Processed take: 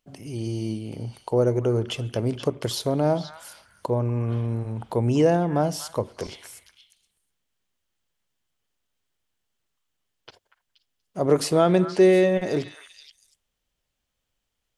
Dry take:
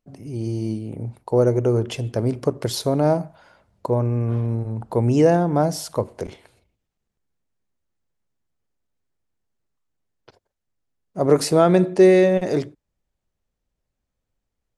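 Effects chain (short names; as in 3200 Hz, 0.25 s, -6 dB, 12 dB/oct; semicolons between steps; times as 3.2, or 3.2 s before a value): bell 3100 Hz +7 dB 0.37 oct; on a send: delay with a stepping band-pass 0.238 s, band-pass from 1500 Hz, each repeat 1.4 oct, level -9 dB; on the sum: mismatched tape noise reduction encoder only; gain -3.5 dB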